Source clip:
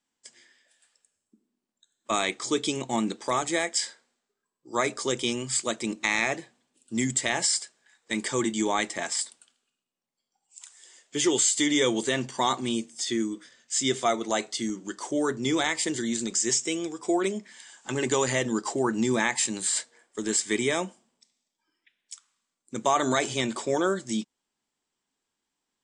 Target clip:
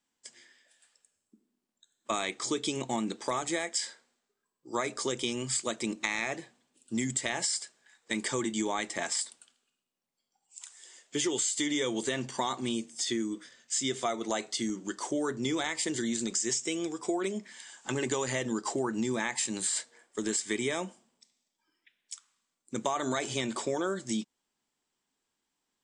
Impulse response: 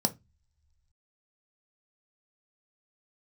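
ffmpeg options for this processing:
-af "acompressor=threshold=-28dB:ratio=4"

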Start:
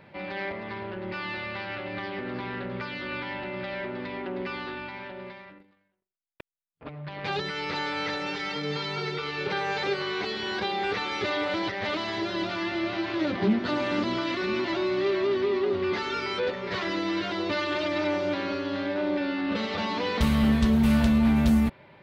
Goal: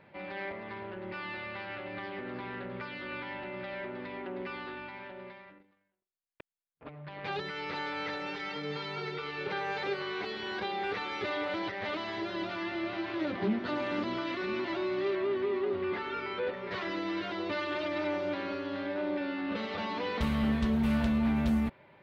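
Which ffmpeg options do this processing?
-filter_complex "[0:a]asettb=1/sr,asplit=3[a][b][c];[a]atrim=end=15.154[d];[b]atrim=start=15.15:end=16.71,asetpts=PTS-STARTPTS,afade=t=in:d=0.004:c=qsin,afade=t=out:st=1.556:d=0.004:c=qsin,acrossover=split=3700[e][f];[f]acompressor=threshold=-57dB:ratio=4:attack=1:release=60[g];[e][g]amix=inputs=2:normalize=0[h];[c]atrim=start=16.706[i];[d][h]acrossfade=d=0.004:c1=hsin:c2=qsin[j];[j][i]acrossfade=d=0.004:c1=qsin:c2=hsin,bass=f=250:g=-3,treble=f=4k:g=-8,volume=-5dB"

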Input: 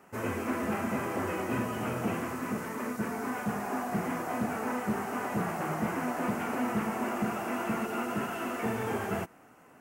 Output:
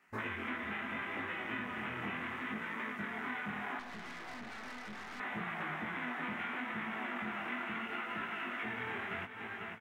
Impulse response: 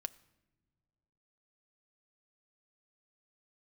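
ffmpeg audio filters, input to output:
-filter_complex "[0:a]afwtdn=0.0112,equalizer=f=125:t=o:w=1:g=-6,equalizer=f=500:t=o:w=1:g=-7,equalizer=f=2k:t=o:w=1:g=12,equalizer=f=4k:t=o:w=1:g=8,aecho=1:1:497|994|1491:0.2|0.0619|0.0192,acompressor=threshold=-39dB:ratio=6,flanger=delay=17.5:depth=7.4:speed=0.73,asettb=1/sr,asplit=3[a][b][c];[a]atrim=end=3.794[d];[b]atrim=start=3.79:end=5.2,asetpts=PTS-STARTPTS,afade=t=in:d=0.004:c=qsin,afade=t=out:st=1.406:d=0.004:c=qsin,aeval=exprs='(tanh(251*val(0)+0.6)-tanh(0.6))/251':c=same[e];[c]atrim=start=5.196[f];[d][e]acrossfade=d=0.004:c1=hsin:c2=qsin[g];[g][f]acrossfade=d=0.004:c1=qsin:c2=hsin,volume=4.5dB"

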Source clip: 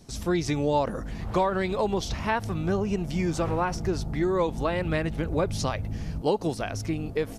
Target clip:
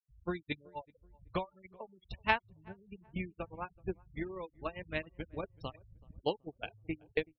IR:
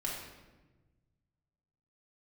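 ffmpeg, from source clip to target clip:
-filter_complex "[0:a]asplit=2[a][b];[b]adelay=16,volume=-13dB[c];[a][c]amix=inputs=2:normalize=0,acompressor=threshold=-31dB:ratio=8,equalizer=f=2.8k:w=1.2:g=9.5,adynamicsmooth=sensitivity=7.5:basefreq=5.8k,asettb=1/sr,asplit=3[d][e][f];[d]atrim=end=0.524[g];[e]atrim=start=0.52:end=3.01,asetpts=PTS-STARTPTS,afade=t=in:d=0.004:c=qsin,afade=t=out:st=2.486:d=0.004:c=qsin,adynamicequalizer=threshold=0.00355:dfrequency=350:dqfactor=2.3:tfrequency=350:tqfactor=2.3:attack=5:release=100:ratio=0.375:range=2:mode=cutabove:tftype=bell[h];[f]atrim=start=3.006[i];[g][h]acrossfade=d=0.004:c1=hsin:c2=qsin[j];[j][i]acrossfade=d=0.004:c1=qsin:c2=hsin,agate=range=-35dB:threshold=-29dB:ratio=16:detection=peak,afftfilt=real='re*gte(hypot(re,im),0.00178)':imag='im*gte(hypot(re,im),0.00178)':win_size=1024:overlap=0.75,asplit=2[k][l];[l]adelay=378,lowpass=f=970:p=1,volume=-24dB,asplit=2[m][n];[n]adelay=378,lowpass=f=970:p=1,volume=0.42,asplit=2[o][p];[p]adelay=378,lowpass=f=970:p=1,volume=0.42[q];[k][m][o][q]amix=inputs=4:normalize=0,volume=12dB"

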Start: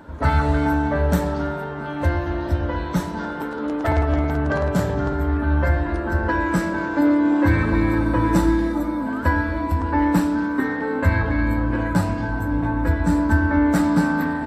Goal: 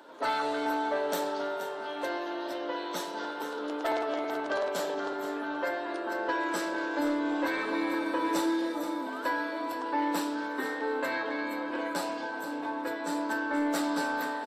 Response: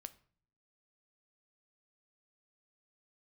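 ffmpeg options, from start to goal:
-filter_complex "[0:a]highpass=f=350:w=0.5412,highpass=f=350:w=1.3066,highshelf=f=2.6k:t=q:w=1.5:g=6.5,asoftclip=type=tanh:threshold=-13.5dB,aecho=1:1:477:0.251,asplit=2[a][b];[1:a]atrim=start_sample=2205,lowpass=5.2k[c];[b][c]afir=irnorm=-1:irlink=0,volume=-0.5dB[d];[a][d]amix=inputs=2:normalize=0,volume=-8.5dB"

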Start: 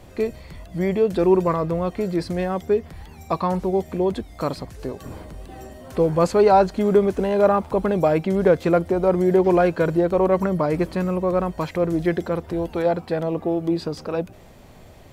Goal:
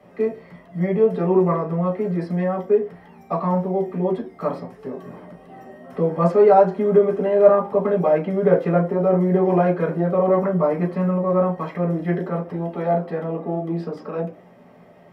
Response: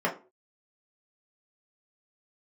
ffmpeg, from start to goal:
-filter_complex "[0:a]lowshelf=f=190:g=-3[a];[1:a]atrim=start_sample=2205[b];[a][b]afir=irnorm=-1:irlink=0,volume=-13dB"

